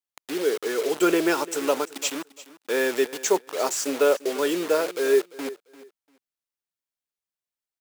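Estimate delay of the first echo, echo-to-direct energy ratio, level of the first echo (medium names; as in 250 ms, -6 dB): 345 ms, -18.0 dB, -18.0 dB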